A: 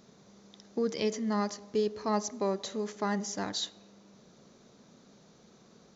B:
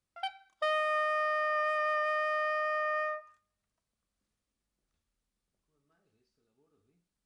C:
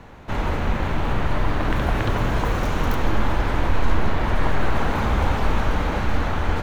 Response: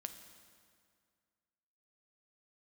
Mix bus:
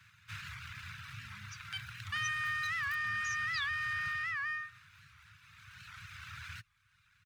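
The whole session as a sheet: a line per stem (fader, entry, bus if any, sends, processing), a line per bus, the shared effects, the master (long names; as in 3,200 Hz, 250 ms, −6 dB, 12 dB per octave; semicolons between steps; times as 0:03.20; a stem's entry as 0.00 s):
−5.5 dB, 0.00 s, no send, no echo send, expanding power law on the bin magnitudes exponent 3.9
+0.5 dB, 1.50 s, no send, no echo send, no processing
0:04.10 −6.5 dB → 0:04.45 −19.5 dB → 0:05.38 −19.5 dB → 0:05.82 −9.5 dB, 0.00 s, no send, echo send −23.5 dB, lower of the sound and its delayed copy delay 0.79 ms; high-pass filter 120 Hz 24 dB per octave; reverb reduction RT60 0.7 s; automatic ducking −6 dB, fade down 1.70 s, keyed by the first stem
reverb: not used
echo: single-tap delay 1,179 ms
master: elliptic band-stop filter 110–1,600 Hz, stop band 70 dB; wow of a warped record 78 rpm, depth 160 cents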